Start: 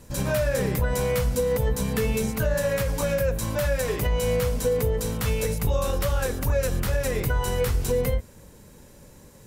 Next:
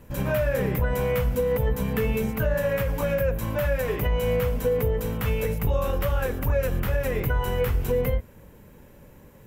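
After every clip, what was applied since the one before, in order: high-order bell 6.3 kHz -11.5 dB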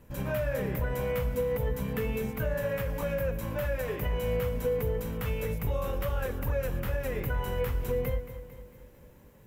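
bit-crushed delay 225 ms, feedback 55%, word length 9-bit, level -13 dB; trim -6.5 dB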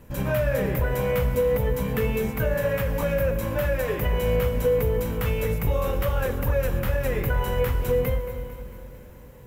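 reverberation RT60 4.3 s, pre-delay 58 ms, DRR 12.5 dB; trim +6.5 dB

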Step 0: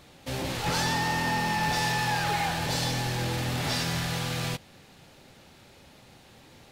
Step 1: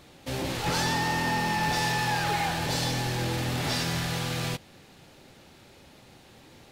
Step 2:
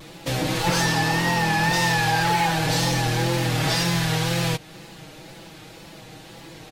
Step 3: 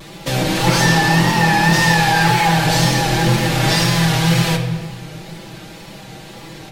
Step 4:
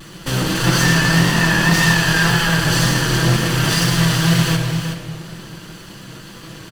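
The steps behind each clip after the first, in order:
peaking EQ 340 Hz +3 dB 0.67 oct
comb 6.2 ms, depth 74%; compression 1.5:1, threshold -35 dBFS, peak gain reduction 5.5 dB; wow and flutter 67 cents; trim +8.5 dB
simulated room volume 1800 m³, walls mixed, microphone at 1.2 m; trim +5 dB
comb filter that takes the minimum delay 0.65 ms; delay 372 ms -8.5 dB

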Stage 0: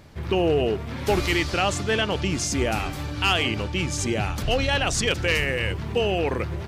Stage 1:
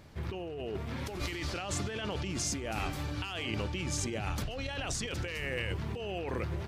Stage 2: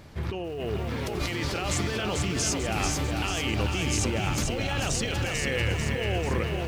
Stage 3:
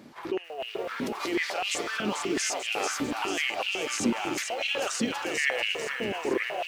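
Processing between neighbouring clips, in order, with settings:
compressor with a negative ratio -27 dBFS, ratio -1; trim -8.5 dB
bit-crushed delay 442 ms, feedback 55%, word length 10-bit, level -4 dB; trim +6 dB
step-sequenced high-pass 8 Hz 240–2700 Hz; trim -3 dB

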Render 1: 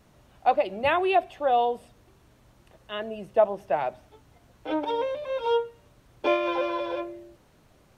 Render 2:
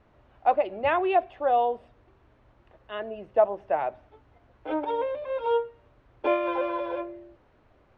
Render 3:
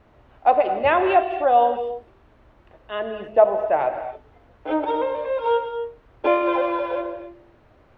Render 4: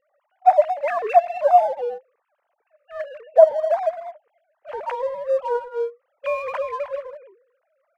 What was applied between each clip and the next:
low-pass 2.2 kHz 12 dB/octave; peaking EQ 170 Hz -9 dB 0.8 oct
gated-style reverb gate 300 ms flat, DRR 7 dB; trim +5.5 dB
formants replaced by sine waves; in parallel at -6 dB: crossover distortion -35 dBFS; on the sum: trim -3 dB

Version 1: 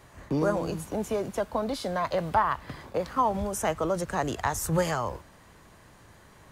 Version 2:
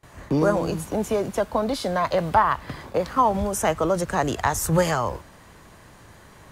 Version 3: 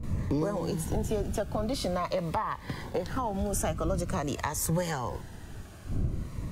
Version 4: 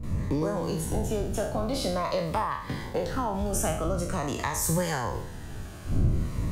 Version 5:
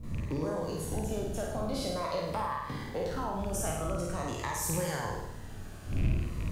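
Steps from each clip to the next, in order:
gate with hold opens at -46 dBFS; trim +5.5 dB
wind noise 120 Hz -31 dBFS; compression 4:1, threshold -26 dBFS, peak gain reduction 11.5 dB; Shepard-style phaser falling 0.47 Hz
spectral sustain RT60 0.58 s; gain riding within 5 dB 2 s
rattle on loud lows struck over -23 dBFS, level -27 dBFS; bit crusher 11-bit; flutter echo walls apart 8.9 m, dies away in 0.76 s; trim -7 dB

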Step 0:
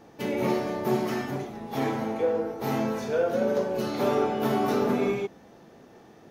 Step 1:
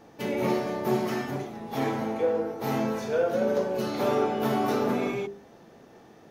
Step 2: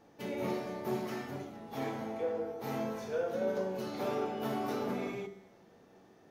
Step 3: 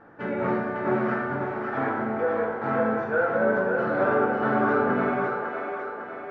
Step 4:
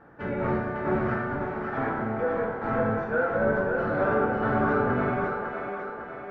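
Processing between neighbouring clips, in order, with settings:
hum notches 50/100/150/200/250/300/350/400 Hz
feedback comb 95 Hz, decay 1 s, harmonics all, mix 70%
resonant low-pass 1.5 kHz, resonance Q 4.8; two-band feedback delay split 320 Hz, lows 81 ms, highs 553 ms, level -4 dB; trim +7.5 dB
octave divider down 1 oct, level -3 dB; trim -2 dB

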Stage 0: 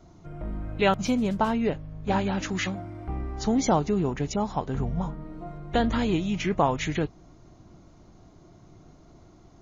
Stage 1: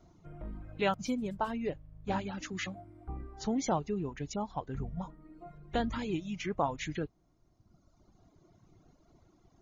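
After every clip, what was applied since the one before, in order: reverb removal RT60 1.6 s; trim -7.5 dB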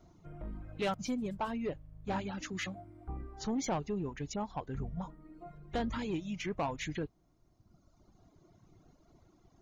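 saturation -27 dBFS, distortion -13 dB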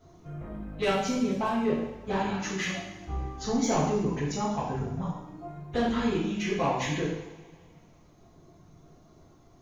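two-slope reverb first 0.85 s, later 2.7 s, from -19 dB, DRR -8 dB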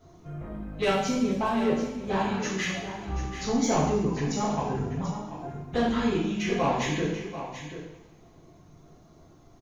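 delay 736 ms -11 dB; trim +1.5 dB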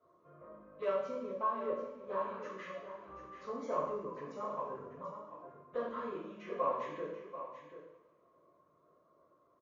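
two resonant band-passes 780 Hz, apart 0.95 oct; trim -1 dB

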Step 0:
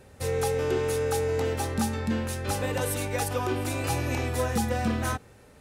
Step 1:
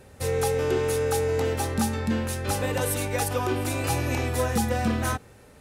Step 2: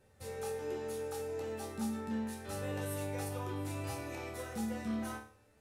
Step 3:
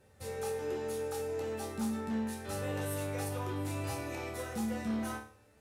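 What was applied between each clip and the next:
peaking EQ 12 kHz +2 dB; trim +2 dB
chord resonator D2 sus4, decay 0.46 s; trim -2 dB
one-sided clip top -34 dBFS; trim +3 dB

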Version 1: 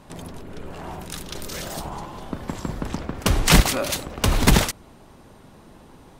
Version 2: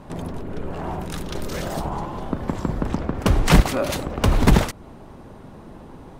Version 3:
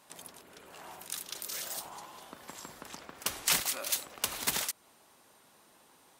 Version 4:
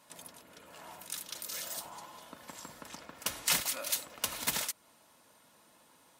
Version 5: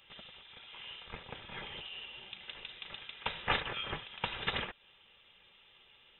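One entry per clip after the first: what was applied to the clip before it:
treble shelf 2.1 kHz -11.5 dB; in parallel at +2 dB: compression, threshold -28 dBFS, peak gain reduction 18 dB
differentiator; trim +1.5 dB
comb of notches 390 Hz
frequency inversion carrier 3.8 kHz; trim +2.5 dB

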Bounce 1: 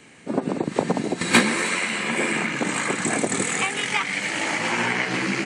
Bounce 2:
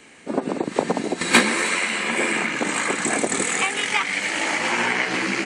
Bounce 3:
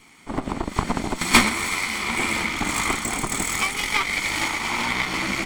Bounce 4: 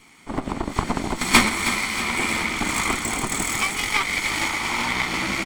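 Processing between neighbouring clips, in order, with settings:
peaking EQ 130 Hz -9.5 dB 1.2 oct; trim +2 dB
comb filter that takes the minimum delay 0.91 ms; tremolo saw up 0.67 Hz, depth 35%; trim +1.5 dB
feedback delay 317 ms, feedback 58%, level -11 dB

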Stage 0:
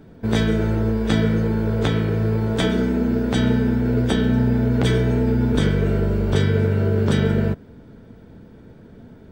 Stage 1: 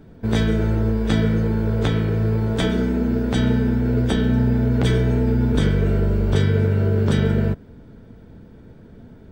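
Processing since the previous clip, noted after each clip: bass shelf 86 Hz +6.5 dB; trim -1.5 dB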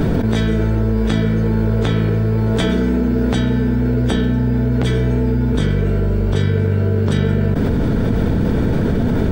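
level flattener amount 100%; trim -1 dB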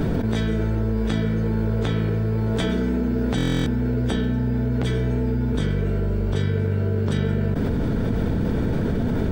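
buffer glitch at 3.36 s, samples 1024, times 12; trim -6 dB

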